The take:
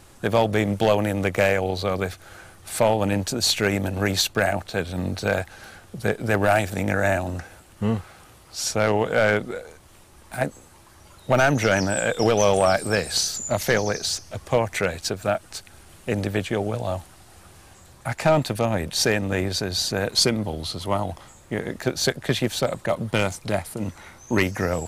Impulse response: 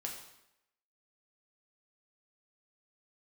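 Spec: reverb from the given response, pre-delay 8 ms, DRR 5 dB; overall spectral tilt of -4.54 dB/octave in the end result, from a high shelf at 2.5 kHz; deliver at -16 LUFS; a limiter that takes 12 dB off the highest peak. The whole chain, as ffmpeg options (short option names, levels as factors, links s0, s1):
-filter_complex "[0:a]highshelf=f=2500:g=-5.5,alimiter=limit=0.0841:level=0:latency=1,asplit=2[s0][s1];[1:a]atrim=start_sample=2205,adelay=8[s2];[s1][s2]afir=irnorm=-1:irlink=0,volume=0.596[s3];[s0][s3]amix=inputs=2:normalize=0,volume=5.62"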